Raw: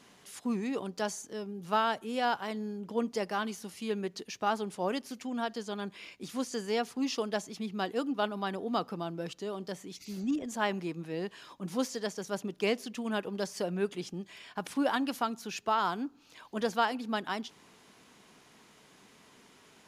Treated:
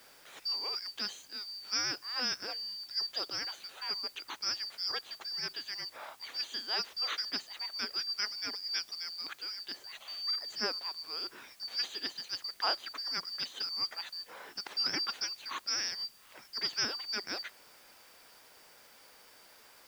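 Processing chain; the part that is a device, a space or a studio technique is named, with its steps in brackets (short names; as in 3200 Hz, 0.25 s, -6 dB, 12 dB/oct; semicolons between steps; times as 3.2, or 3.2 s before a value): split-band scrambled radio (four-band scrambler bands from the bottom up 2341; BPF 360–3400 Hz; white noise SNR 23 dB); gain +3 dB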